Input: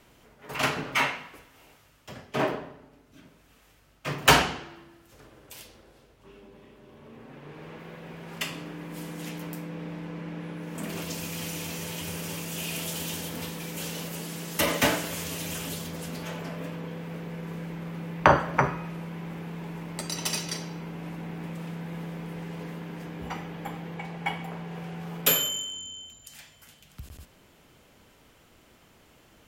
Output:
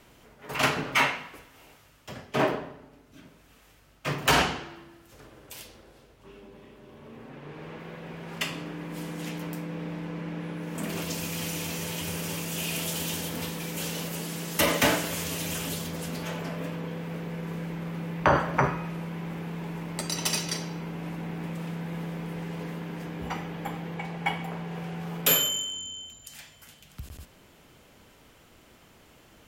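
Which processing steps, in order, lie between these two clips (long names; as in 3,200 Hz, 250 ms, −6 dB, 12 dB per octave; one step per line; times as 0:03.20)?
0:07.29–0:09.69: high-shelf EQ 8,400 Hz −5 dB
boost into a limiter +10.5 dB
level −8.5 dB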